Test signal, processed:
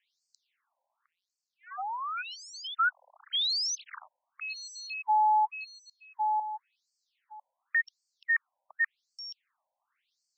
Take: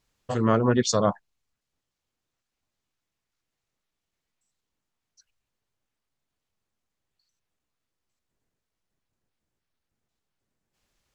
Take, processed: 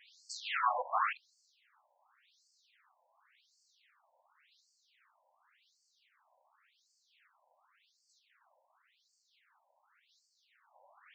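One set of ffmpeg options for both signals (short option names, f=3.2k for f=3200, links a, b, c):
-filter_complex "[0:a]asplit=2[a][b];[b]highpass=f=720:p=1,volume=42dB,asoftclip=type=tanh:threshold=-7dB[c];[a][c]amix=inputs=2:normalize=0,lowpass=f=2.1k:p=1,volume=-6dB,afftfilt=real='re*between(b*sr/1024,710*pow(6200/710,0.5+0.5*sin(2*PI*0.9*pts/sr))/1.41,710*pow(6200/710,0.5+0.5*sin(2*PI*0.9*pts/sr))*1.41)':imag='im*between(b*sr/1024,710*pow(6200/710,0.5+0.5*sin(2*PI*0.9*pts/sr))/1.41,710*pow(6200/710,0.5+0.5*sin(2*PI*0.9*pts/sr))*1.41)':win_size=1024:overlap=0.75,volume=-9dB"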